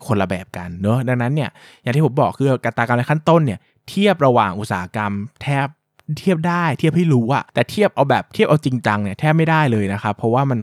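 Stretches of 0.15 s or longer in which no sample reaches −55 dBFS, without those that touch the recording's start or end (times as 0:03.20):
0:05.74–0:05.98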